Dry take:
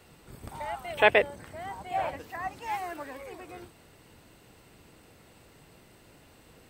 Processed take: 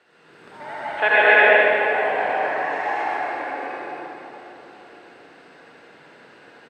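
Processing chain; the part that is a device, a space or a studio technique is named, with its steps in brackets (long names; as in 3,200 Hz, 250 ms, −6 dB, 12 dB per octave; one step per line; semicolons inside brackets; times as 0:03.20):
station announcement (band-pass filter 320–4,400 Hz; parametric band 1,600 Hz +10 dB 0.34 octaves; loudspeakers that aren't time-aligned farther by 51 metres −3 dB, 79 metres −3 dB, 93 metres −3 dB; convolution reverb RT60 3.9 s, pre-delay 65 ms, DRR −8 dB)
level −3 dB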